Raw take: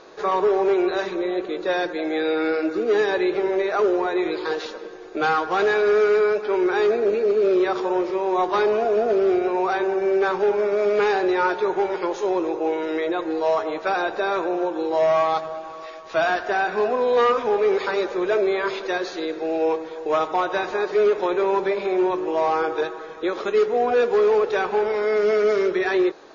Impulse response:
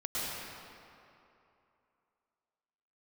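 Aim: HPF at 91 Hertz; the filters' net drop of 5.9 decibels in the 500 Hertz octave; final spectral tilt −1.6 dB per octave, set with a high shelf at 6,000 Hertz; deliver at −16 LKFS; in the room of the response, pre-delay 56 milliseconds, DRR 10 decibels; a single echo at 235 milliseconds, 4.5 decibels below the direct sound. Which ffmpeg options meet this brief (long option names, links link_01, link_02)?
-filter_complex "[0:a]highpass=91,equalizer=frequency=500:width_type=o:gain=-8,highshelf=frequency=6000:gain=5.5,aecho=1:1:235:0.596,asplit=2[link_01][link_02];[1:a]atrim=start_sample=2205,adelay=56[link_03];[link_02][link_03]afir=irnorm=-1:irlink=0,volume=-16dB[link_04];[link_01][link_04]amix=inputs=2:normalize=0,volume=8dB"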